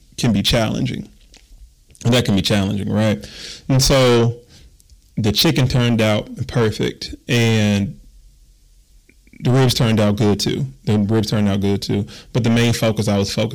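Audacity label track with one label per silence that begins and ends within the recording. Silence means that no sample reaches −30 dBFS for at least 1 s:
7.930000	9.360000	silence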